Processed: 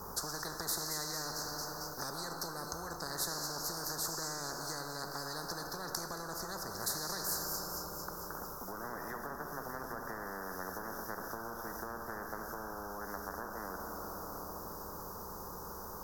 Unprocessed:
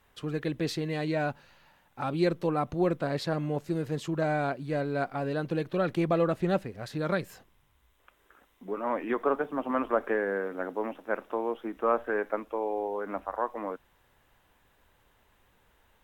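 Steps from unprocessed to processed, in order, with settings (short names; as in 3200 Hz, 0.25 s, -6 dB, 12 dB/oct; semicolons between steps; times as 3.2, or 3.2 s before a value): ripple EQ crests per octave 0.8, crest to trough 10 dB; thin delay 0.225 s, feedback 62%, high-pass 5400 Hz, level -11.5 dB; compressor, threshold -31 dBFS, peak gain reduction 12.5 dB; elliptic band-stop 1400–4800 Hz, stop band 50 dB; plate-style reverb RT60 2.4 s, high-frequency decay 0.9×, DRR 7.5 dB; spectral compressor 10:1; gain +5 dB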